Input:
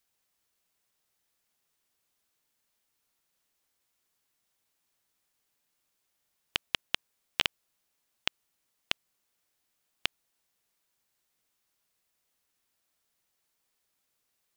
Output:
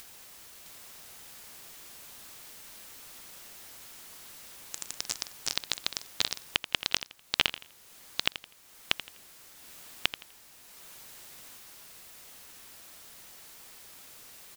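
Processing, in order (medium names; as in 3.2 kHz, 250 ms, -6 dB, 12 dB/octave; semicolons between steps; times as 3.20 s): upward compressor, threshold -32 dBFS; feedback delay 83 ms, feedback 28%, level -13 dB; ever faster or slower copies 662 ms, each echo +5 st, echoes 3; trim +2.5 dB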